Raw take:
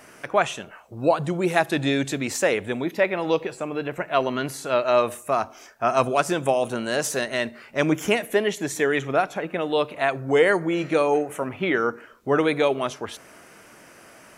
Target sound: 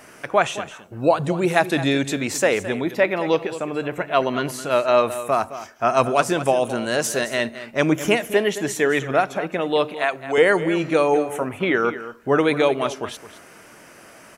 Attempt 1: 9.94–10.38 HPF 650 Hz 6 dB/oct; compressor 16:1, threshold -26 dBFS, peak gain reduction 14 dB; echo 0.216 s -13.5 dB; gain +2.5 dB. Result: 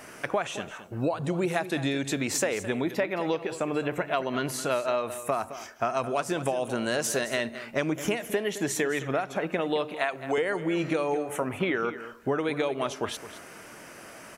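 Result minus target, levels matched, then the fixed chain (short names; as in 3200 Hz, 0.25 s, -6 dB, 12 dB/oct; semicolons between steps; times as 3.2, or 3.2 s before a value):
compressor: peak gain reduction +14 dB
9.94–10.38 HPF 650 Hz 6 dB/oct; echo 0.216 s -13.5 dB; gain +2.5 dB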